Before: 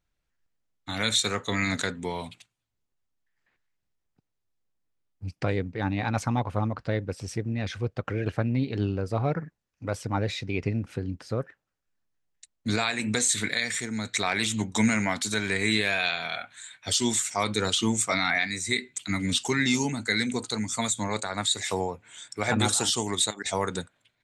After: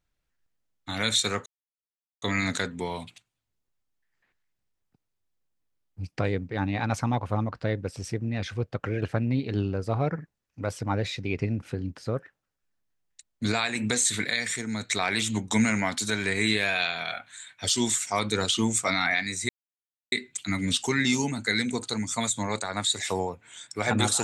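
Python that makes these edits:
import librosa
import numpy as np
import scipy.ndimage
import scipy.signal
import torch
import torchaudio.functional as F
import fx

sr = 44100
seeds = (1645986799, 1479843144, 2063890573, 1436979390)

y = fx.edit(x, sr, fx.insert_silence(at_s=1.46, length_s=0.76),
    fx.insert_silence(at_s=18.73, length_s=0.63), tone=tone)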